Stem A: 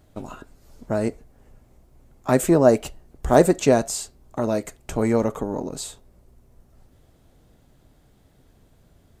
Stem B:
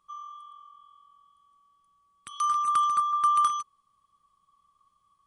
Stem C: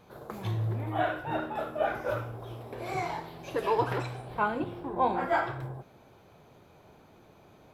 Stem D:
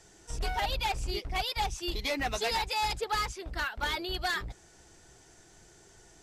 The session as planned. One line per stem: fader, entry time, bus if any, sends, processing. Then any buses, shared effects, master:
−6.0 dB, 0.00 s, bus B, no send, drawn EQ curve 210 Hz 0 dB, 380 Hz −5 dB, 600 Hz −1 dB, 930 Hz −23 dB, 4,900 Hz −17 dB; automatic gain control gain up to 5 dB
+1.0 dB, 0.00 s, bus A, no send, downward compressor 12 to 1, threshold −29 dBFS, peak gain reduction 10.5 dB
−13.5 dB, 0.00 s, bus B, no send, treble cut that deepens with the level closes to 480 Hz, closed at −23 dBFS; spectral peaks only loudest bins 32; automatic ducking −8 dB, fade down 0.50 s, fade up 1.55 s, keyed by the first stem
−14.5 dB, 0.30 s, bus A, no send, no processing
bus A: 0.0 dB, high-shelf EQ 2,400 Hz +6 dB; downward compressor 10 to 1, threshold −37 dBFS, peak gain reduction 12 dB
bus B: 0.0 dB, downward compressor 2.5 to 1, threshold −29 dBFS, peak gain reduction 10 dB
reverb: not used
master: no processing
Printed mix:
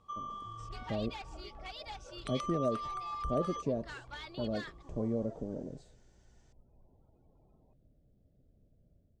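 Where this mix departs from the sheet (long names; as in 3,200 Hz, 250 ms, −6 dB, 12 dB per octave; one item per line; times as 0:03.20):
stem A −6.0 dB → −14.5 dB
master: extra high-frequency loss of the air 100 metres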